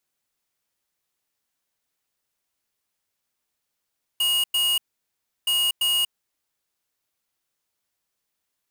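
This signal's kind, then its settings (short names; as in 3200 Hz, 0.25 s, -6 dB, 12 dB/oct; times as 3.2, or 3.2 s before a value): beep pattern square 2870 Hz, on 0.24 s, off 0.10 s, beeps 2, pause 0.69 s, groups 2, -21.5 dBFS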